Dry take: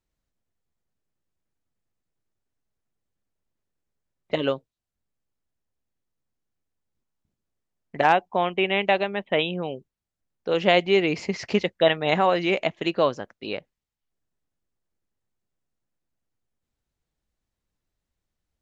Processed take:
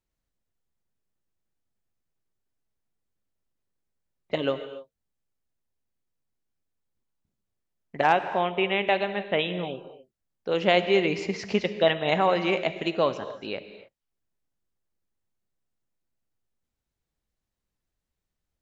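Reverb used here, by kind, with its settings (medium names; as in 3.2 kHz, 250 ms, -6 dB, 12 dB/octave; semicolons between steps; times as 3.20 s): gated-style reverb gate 310 ms flat, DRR 10 dB; trim -2.5 dB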